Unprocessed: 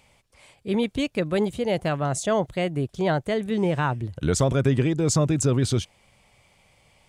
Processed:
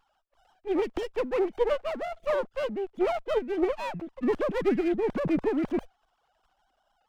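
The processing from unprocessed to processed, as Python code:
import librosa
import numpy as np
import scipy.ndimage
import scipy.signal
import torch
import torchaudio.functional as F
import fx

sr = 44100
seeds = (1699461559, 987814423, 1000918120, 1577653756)

y = fx.sine_speech(x, sr)
y = fx.running_max(y, sr, window=17)
y = y * 10.0 ** (-4.0 / 20.0)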